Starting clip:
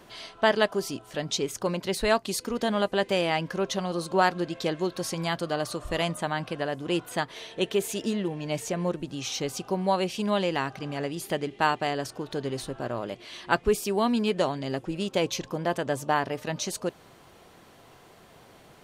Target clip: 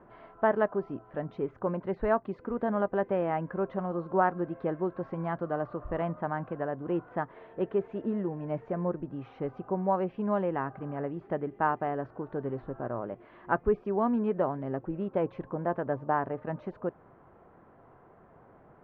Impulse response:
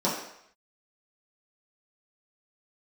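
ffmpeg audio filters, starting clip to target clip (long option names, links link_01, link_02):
-af "lowpass=frequency=1500:width=0.5412,lowpass=frequency=1500:width=1.3066,volume=-2.5dB"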